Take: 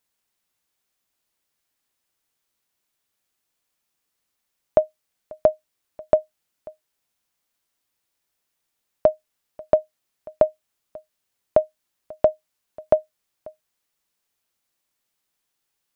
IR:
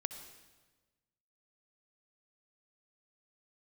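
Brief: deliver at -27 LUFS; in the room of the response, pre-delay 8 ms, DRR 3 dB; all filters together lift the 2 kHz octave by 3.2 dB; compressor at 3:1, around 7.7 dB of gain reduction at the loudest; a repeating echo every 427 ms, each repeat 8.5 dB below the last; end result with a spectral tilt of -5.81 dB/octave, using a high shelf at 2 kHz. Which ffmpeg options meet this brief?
-filter_complex "[0:a]highshelf=f=2000:g=-5,equalizer=f=2000:t=o:g=7,acompressor=threshold=0.0794:ratio=3,aecho=1:1:427|854|1281|1708:0.376|0.143|0.0543|0.0206,asplit=2[s0][s1];[1:a]atrim=start_sample=2205,adelay=8[s2];[s1][s2]afir=irnorm=-1:irlink=0,volume=0.75[s3];[s0][s3]amix=inputs=2:normalize=0,volume=1.33"

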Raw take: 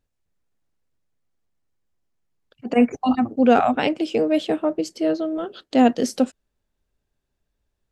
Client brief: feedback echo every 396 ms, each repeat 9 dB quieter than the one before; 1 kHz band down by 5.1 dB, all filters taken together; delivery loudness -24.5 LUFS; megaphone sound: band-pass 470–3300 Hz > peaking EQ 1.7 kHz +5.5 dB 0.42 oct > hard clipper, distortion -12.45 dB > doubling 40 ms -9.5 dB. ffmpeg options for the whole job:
-filter_complex "[0:a]highpass=470,lowpass=3300,equalizer=f=1000:t=o:g=-8,equalizer=f=1700:t=o:w=0.42:g=5.5,aecho=1:1:396|792|1188|1584:0.355|0.124|0.0435|0.0152,asoftclip=type=hard:threshold=0.119,asplit=2[s0][s1];[s1]adelay=40,volume=0.335[s2];[s0][s2]amix=inputs=2:normalize=0,volume=1.5"

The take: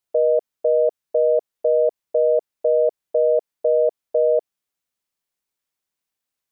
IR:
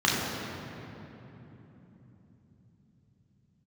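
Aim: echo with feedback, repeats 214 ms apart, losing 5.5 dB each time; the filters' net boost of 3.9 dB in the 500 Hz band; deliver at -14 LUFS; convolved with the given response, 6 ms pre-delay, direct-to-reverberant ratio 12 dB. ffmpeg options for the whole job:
-filter_complex "[0:a]equalizer=f=500:t=o:g=4.5,aecho=1:1:214|428|642|856|1070|1284|1498:0.531|0.281|0.149|0.079|0.0419|0.0222|0.0118,asplit=2[s0][s1];[1:a]atrim=start_sample=2205,adelay=6[s2];[s1][s2]afir=irnorm=-1:irlink=0,volume=0.0398[s3];[s0][s3]amix=inputs=2:normalize=0,volume=1.19"

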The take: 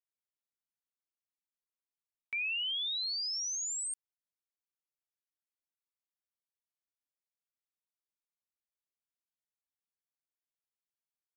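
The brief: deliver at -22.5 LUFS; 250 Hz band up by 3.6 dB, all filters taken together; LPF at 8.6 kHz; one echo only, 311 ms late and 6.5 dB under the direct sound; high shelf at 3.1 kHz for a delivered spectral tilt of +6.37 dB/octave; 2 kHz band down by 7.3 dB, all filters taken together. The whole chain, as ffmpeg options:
-af "lowpass=8600,equalizer=f=250:t=o:g=5,equalizer=f=2000:t=o:g=-8.5,highshelf=f=3100:g=-4,aecho=1:1:311:0.473,volume=5.62"

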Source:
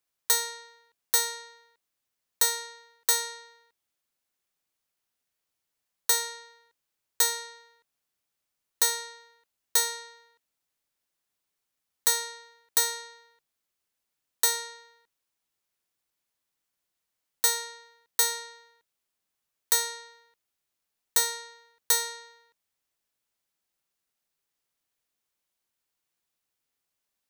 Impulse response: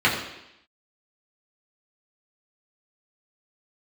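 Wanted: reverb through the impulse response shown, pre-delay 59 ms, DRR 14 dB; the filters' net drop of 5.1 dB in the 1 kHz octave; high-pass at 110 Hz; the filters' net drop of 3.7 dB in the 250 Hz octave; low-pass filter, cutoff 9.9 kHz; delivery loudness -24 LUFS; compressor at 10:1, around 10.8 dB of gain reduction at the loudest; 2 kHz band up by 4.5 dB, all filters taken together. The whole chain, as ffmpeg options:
-filter_complex "[0:a]highpass=110,lowpass=9900,equalizer=f=250:t=o:g=-5,equalizer=f=1000:t=o:g=-8.5,equalizer=f=2000:t=o:g=7,acompressor=threshold=0.0282:ratio=10,asplit=2[s0][s1];[1:a]atrim=start_sample=2205,adelay=59[s2];[s1][s2]afir=irnorm=-1:irlink=0,volume=0.0224[s3];[s0][s3]amix=inputs=2:normalize=0,volume=4.47"

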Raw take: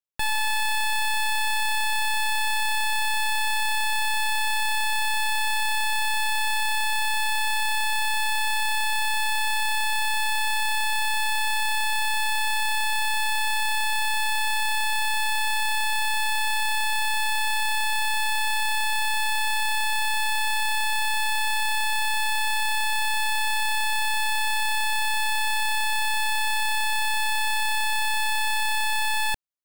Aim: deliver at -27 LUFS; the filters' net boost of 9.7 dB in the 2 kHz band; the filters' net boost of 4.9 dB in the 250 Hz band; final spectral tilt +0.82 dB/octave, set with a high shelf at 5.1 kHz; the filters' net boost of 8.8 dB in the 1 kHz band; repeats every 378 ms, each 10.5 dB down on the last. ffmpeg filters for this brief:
-af "equalizer=f=250:t=o:g=5.5,equalizer=f=1000:t=o:g=8.5,equalizer=f=2000:t=o:g=8.5,highshelf=f=5100:g=7.5,aecho=1:1:378|756|1134:0.299|0.0896|0.0269,volume=0.299"

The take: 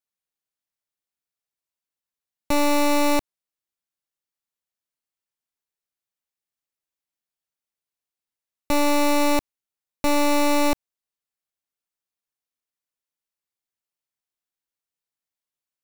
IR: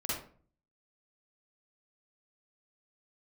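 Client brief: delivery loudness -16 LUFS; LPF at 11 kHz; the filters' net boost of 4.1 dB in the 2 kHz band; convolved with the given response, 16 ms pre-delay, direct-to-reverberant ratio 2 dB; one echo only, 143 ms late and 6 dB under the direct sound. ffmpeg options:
-filter_complex "[0:a]lowpass=11000,equalizer=f=2000:t=o:g=5,aecho=1:1:143:0.501,asplit=2[s0][s1];[1:a]atrim=start_sample=2205,adelay=16[s2];[s1][s2]afir=irnorm=-1:irlink=0,volume=0.501[s3];[s0][s3]amix=inputs=2:normalize=0,volume=1.41"

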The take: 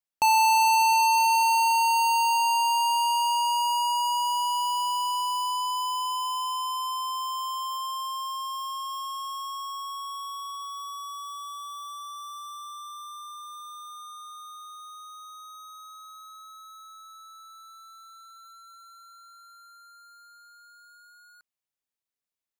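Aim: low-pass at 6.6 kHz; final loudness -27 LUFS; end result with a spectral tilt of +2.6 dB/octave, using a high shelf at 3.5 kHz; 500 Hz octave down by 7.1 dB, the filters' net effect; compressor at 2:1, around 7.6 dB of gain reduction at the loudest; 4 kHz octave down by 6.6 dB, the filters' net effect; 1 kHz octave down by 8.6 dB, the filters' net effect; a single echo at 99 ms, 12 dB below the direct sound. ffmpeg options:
-af "lowpass=6600,equalizer=f=500:t=o:g=-6.5,equalizer=f=1000:t=o:g=-7,highshelf=f=3500:g=-6,equalizer=f=4000:t=o:g=-4.5,acompressor=threshold=0.00794:ratio=2,aecho=1:1:99:0.251,volume=4.22"

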